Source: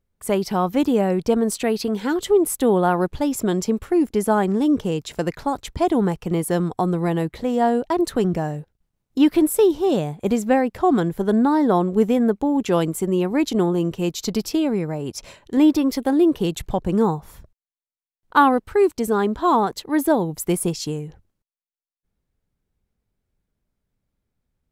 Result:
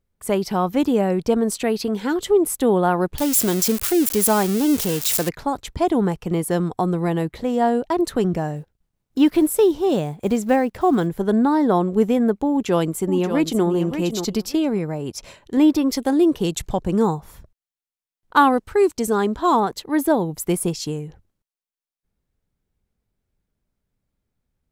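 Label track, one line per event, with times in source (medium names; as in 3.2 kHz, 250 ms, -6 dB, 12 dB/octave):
3.180000	5.290000	zero-crossing glitches of -13.5 dBFS
8.560000	11.080000	block-companded coder 7-bit
12.500000	13.660000	echo throw 580 ms, feedback 15%, level -8 dB
15.880000	19.600000	dynamic bell 6.8 kHz, up to +7 dB, over -46 dBFS, Q 0.92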